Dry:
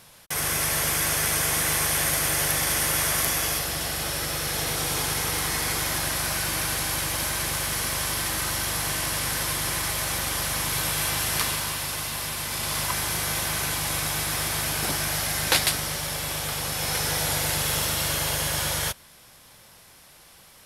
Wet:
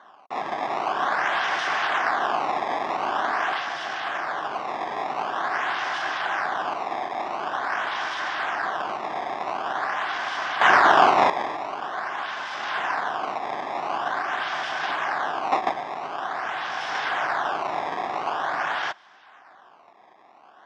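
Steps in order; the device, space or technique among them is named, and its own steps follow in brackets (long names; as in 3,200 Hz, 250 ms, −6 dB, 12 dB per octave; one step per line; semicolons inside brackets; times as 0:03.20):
0:10.61–0:11.30: bass and treble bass +13 dB, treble +14 dB
circuit-bent sampling toy (sample-and-hold swept by an LFO 17×, swing 160% 0.46 Hz; loudspeaker in its box 460–4,600 Hz, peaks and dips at 500 Hz −9 dB, 750 Hz +9 dB, 1,100 Hz +6 dB, 1,600 Hz +7 dB, 2,400 Hz −4 dB, 4,200 Hz −8 dB)
level −1.5 dB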